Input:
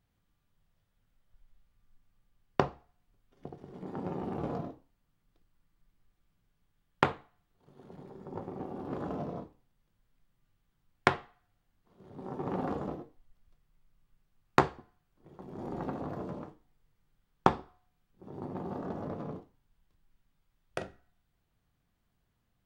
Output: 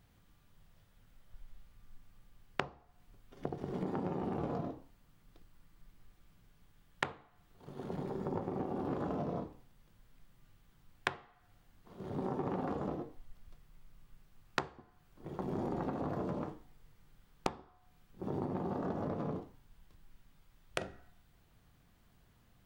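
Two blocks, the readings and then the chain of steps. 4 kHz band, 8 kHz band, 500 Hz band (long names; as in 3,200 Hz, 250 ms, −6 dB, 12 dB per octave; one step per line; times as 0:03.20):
−2.5 dB, −0.5 dB, −2.5 dB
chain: downward compressor 8 to 1, threshold −44 dBFS, peak gain reduction 26.5 dB
level +10.5 dB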